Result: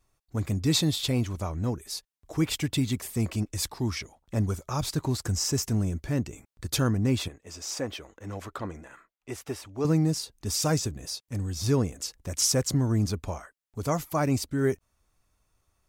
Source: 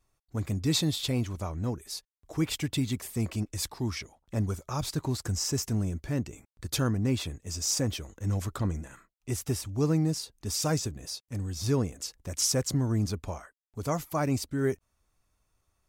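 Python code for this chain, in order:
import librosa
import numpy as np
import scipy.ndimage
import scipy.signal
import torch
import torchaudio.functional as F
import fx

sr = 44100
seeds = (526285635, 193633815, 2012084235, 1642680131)

y = fx.bass_treble(x, sr, bass_db=-14, treble_db=-11, at=(7.28, 9.85))
y = y * 10.0 ** (2.5 / 20.0)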